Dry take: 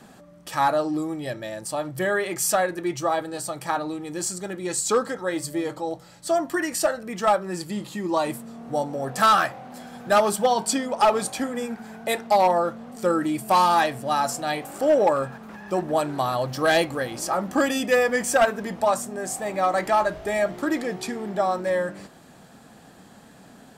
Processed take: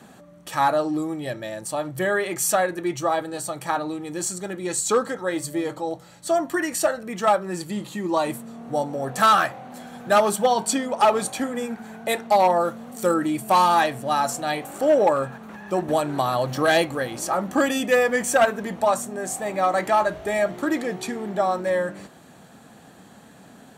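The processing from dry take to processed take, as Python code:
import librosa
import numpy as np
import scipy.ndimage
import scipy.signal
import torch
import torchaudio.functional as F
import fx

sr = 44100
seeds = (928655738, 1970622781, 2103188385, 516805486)

y = fx.high_shelf(x, sr, hz=6700.0, db=11.5, at=(12.6, 13.14))
y = fx.band_squash(y, sr, depth_pct=70, at=(15.88, 16.68))
y = scipy.signal.sosfilt(scipy.signal.butter(2, 57.0, 'highpass', fs=sr, output='sos'), y)
y = fx.notch(y, sr, hz=5000.0, q=7.5)
y = y * 10.0 ** (1.0 / 20.0)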